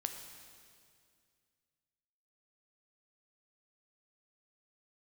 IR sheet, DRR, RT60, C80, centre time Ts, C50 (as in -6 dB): 5.0 dB, 2.2 s, 7.5 dB, 40 ms, 6.5 dB